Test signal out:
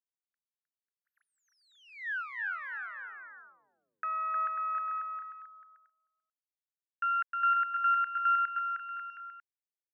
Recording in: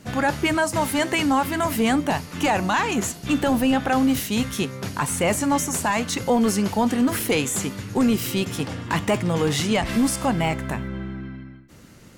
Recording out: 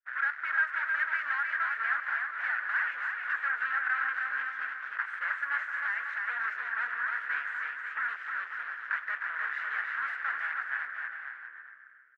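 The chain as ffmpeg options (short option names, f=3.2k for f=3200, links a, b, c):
-filter_complex "[0:a]aeval=exprs='0.237*(cos(1*acos(clip(val(0)/0.237,-1,1)))-cos(1*PI/2))+0.0266*(cos(3*acos(clip(val(0)/0.237,-1,1)))-cos(3*PI/2))+0.0841*(cos(6*acos(clip(val(0)/0.237,-1,1)))-cos(6*PI/2))':c=same,agate=range=-33dB:threshold=-37dB:ratio=3:detection=peak,asuperpass=centerf=1600:order=4:qfactor=3.4,asplit=2[a][b];[b]aecho=0:1:310|542.5|716.9|847.7|945.7:0.631|0.398|0.251|0.158|0.1[c];[a][c]amix=inputs=2:normalize=0"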